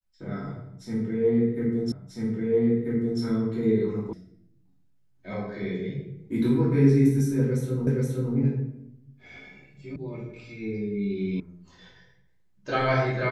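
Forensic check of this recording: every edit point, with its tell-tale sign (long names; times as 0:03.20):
0:01.92: the same again, the last 1.29 s
0:04.13: cut off before it has died away
0:07.87: the same again, the last 0.47 s
0:09.96: cut off before it has died away
0:11.40: cut off before it has died away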